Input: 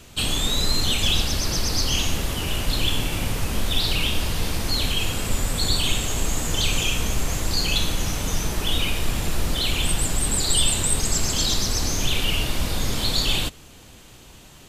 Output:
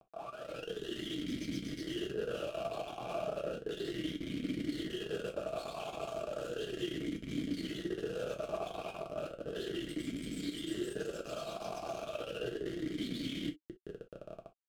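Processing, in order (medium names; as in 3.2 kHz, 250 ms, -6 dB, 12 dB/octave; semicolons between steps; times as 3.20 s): tape start-up on the opening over 0.91 s; in parallel at -10 dB: word length cut 6-bit, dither none; on the sum: compression 16:1, threshold -21 dBFS, peak gain reduction 11 dB; Schmitt trigger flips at -33 dBFS; peaking EQ 2.2 kHz -12.5 dB 2.6 oct; gated-style reverb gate 80 ms falling, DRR 3 dB; level rider gain up to 10 dB; talking filter a-i 0.34 Hz; trim -4 dB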